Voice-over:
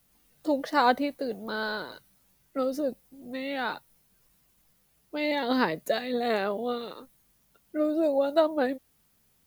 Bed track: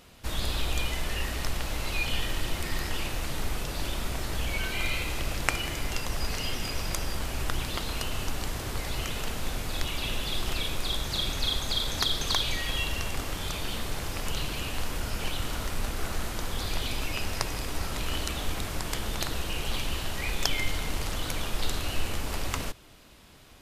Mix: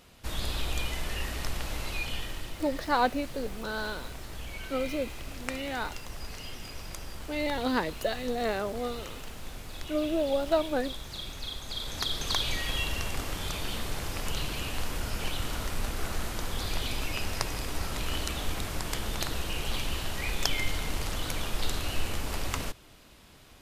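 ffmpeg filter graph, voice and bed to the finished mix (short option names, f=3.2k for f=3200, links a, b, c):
-filter_complex "[0:a]adelay=2150,volume=-3dB[a];[1:a]volume=6dB,afade=t=out:st=1.75:d=0.8:silence=0.446684,afade=t=in:st=11.62:d=0.9:silence=0.375837[b];[a][b]amix=inputs=2:normalize=0"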